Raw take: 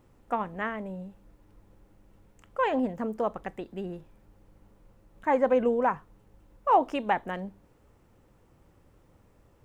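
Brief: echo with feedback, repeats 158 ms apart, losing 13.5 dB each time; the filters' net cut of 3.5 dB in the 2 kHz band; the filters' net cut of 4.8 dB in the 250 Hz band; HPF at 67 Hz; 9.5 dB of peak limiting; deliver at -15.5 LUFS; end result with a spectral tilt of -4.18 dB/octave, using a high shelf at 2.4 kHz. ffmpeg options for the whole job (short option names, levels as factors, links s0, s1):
-af "highpass=67,equalizer=f=250:t=o:g=-5.5,equalizer=f=2000:t=o:g=-7.5,highshelf=f=2400:g=7,alimiter=limit=0.0891:level=0:latency=1,aecho=1:1:158|316:0.211|0.0444,volume=7.94"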